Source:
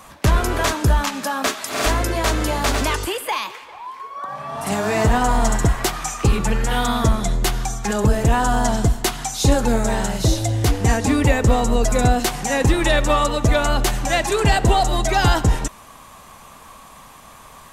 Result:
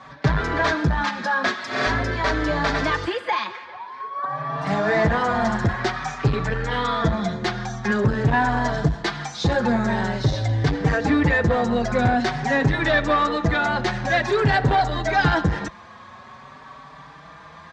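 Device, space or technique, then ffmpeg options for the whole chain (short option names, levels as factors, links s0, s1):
barber-pole flanger into a guitar amplifier: -filter_complex "[0:a]asplit=2[s0][s1];[s1]adelay=4.8,afreqshift=0.48[s2];[s0][s2]amix=inputs=2:normalize=1,asoftclip=type=tanh:threshold=0.168,highpass=77,equalizer=f=150:t=q:w=4:g=6,equalizer=f=1700:t=q:w=4:g=7,equalizer=f=2800:t=q:w=4:g=-7,lowpass=f=4600:w=0.5412,lowpass=f=4600:w=1.3066,volume=1.41"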